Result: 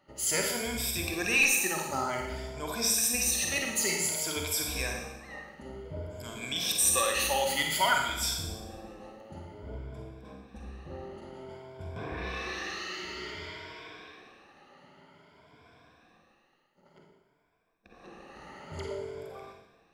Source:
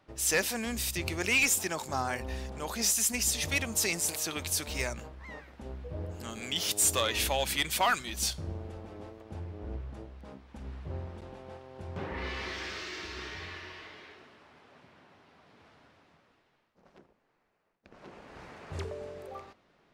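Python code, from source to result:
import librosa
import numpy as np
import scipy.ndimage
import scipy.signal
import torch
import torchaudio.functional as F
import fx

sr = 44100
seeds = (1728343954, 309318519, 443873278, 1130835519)

y = fx.spec_ripple(x, sr, per_octave=1.7, drift_hz=0.54, depth_db=14)
y = fx.rev_schroeder(y, sr, rt60_s=0.95, comb_ms=38, drr_db=1.0)
y = y * librosa.db_to_amplitude(-3.5)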